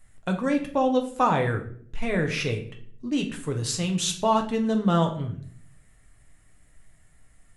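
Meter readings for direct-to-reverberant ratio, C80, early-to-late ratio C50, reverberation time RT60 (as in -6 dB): 2.0 dB, 14.5 dB, 10.0 dB, 0.60 s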